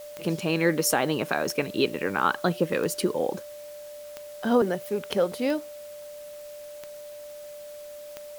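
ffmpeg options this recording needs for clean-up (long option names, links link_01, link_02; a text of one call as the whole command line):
ffmpeg -i in.wav -af "adeclick=threshold=4,bandreject=frequency=590:width=30,afwtdn=0.0028" out.wav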